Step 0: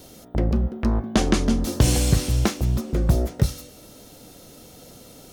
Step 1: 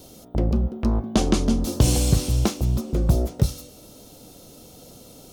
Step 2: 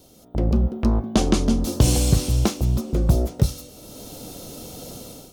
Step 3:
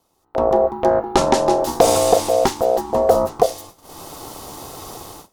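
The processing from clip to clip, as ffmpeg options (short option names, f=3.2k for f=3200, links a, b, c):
-af "equalizer=f=1.8k:w=1.8:g=-8.5"
-af "dynaudnorm=f=160:g=5:m=14.5dB,volume=-6dB"
-af "agate=range=-17dB:threshold=-41dB:ratio=16:detection=peak,aeval=exprs='val(0)*sin(2*PI*590*n/s)':c=same,volume=5.5dB"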